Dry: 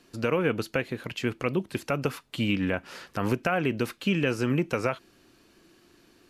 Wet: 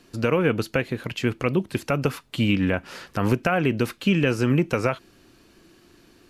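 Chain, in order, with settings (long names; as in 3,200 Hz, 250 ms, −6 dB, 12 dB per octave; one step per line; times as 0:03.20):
low-shelf EQ 150 Hz +5.5 dB
level +3.5 dB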